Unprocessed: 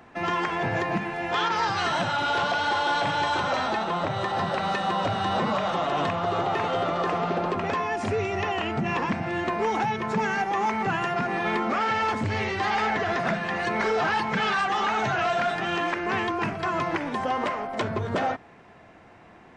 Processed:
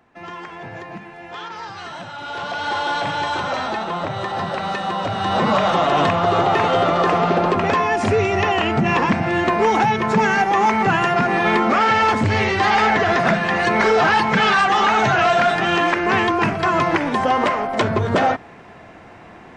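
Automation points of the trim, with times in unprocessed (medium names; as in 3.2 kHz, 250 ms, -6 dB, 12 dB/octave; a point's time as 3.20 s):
2.13 s -7.5 dB
2.74 s +2.5 dB
5.08 s +2.5 dB
5.55 s +9 dB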